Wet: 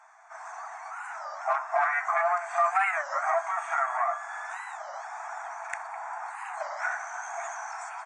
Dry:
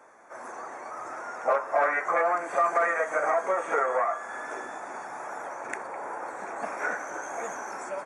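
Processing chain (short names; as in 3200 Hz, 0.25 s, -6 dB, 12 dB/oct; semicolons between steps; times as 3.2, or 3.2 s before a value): brick-wall FIR band-pass 640–9000 Hz; record warp 33 1/3 rpm, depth 250 cents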